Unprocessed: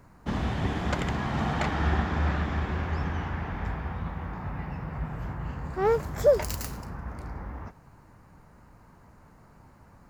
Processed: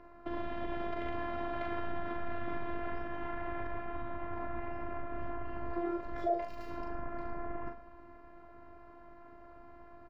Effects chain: compressor 6:1, threshold -33 dBFS, peak gain reduction 17 dB; limiter -29.5 dBFS, peak gain reduction 9.5 dB; HPF 72 Hz 6 dB/oct; bell 540 Hz +13 dB 0.21 oct; doubler 41 ms -5 dB; robotiser 345 Hz; air absorption 350 m; on a send: echo 0.109 s -15 dB; on the sum: gain +4.5 dB

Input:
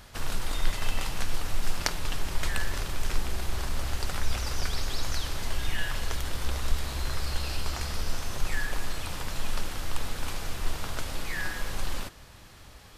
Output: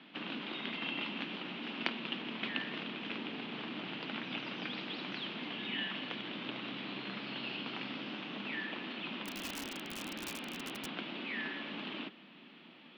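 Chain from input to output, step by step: mistuned SSB +64 Hz 160–3100 Hz; band shelf 900 Hz -11 dB 2.6 oct; 9.25–10.86 wrapped overs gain 38 dB; gain +4 dB

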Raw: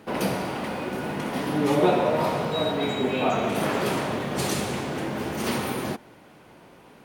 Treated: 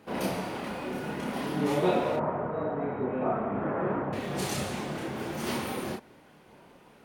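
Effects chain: 2.16–4.13 LPF 1600 Hz 24 dB/oct; chorus voices 4, 0.95 Hz, delay 30 ms, depth 3 ms; gain -2 dB

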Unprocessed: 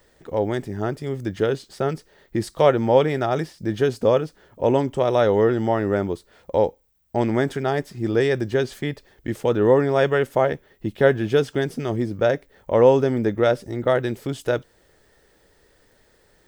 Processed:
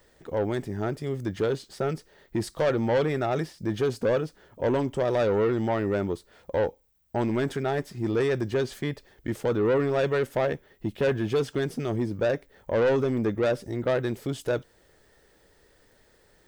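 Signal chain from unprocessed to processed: soft clip -16.5 dBFS, distortion -10 dB; gain -2 dB

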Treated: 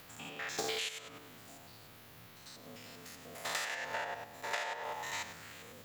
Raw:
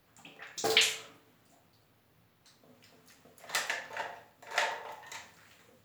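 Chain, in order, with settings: stepped spectrum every 0.1 s; compressor 16:1, threshold -44 dBFS, peak gain reduction 19 dB; mismatched tape noise reduction encoder only; gain +10 dB

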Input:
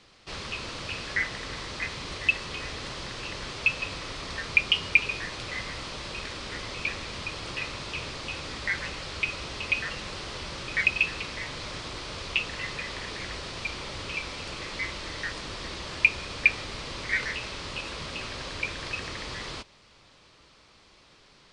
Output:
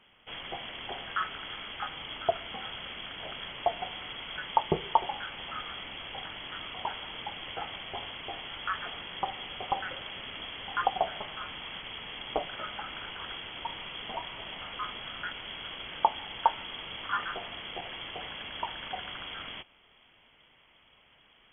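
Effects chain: inverted band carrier 3300 Hz; gain -3.5 dB

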